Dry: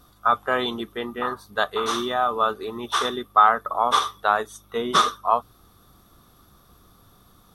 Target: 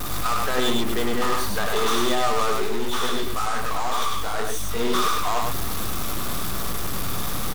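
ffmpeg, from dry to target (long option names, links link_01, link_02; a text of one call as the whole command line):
ffmpeg -i in.wav -filter_complex "[0:a]aeval=exprs='val(0)+0.5*0.0794*sgn(val(0))':channel_layout=same,alimiter=limit=-14dB:level=0:latency=1:release=25,aeval=exprs='0.2*(cos(1*acos(clip(val(0)/0.2,-1,1)))-cos(1*PI/2))+0.0501*(cos(8*acos(clip(val(0)/0.2,-1,1)))-cos(8*PI/2))':channel_layout=same,asplit=3[link_01][link_02][link_03];[link_01]afade=type=out:start_time=2.65:duration=0.02[link_04];[link_02]flanger=delay=15.5:depth=7.4:speed=2,afade=type=in:start_time=2.65:duration=0.02,afade=type=out:start_time=4.79:duration=0.02[link_05];[link_03]afade=type=in:start_time=4.79:duration=0.02[link_06];[link_04][link_05][link_06]amix=inputs=3:normalize=0,aecho=1:1:102:0.708,volume=-3dB" out.wav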